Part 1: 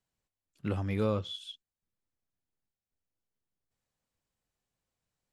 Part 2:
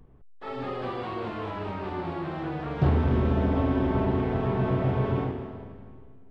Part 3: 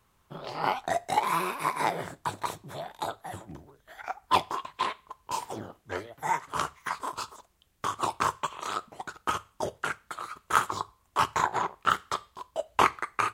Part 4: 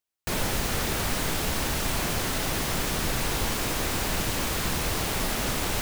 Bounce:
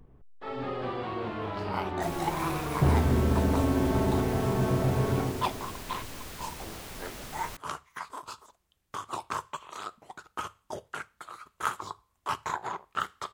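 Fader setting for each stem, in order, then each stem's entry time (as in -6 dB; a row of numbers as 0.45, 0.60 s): off, -1.0 dB, -6.5 dB, -14.5 dB; off, 0.00 s, 1.10 s, 1.75 s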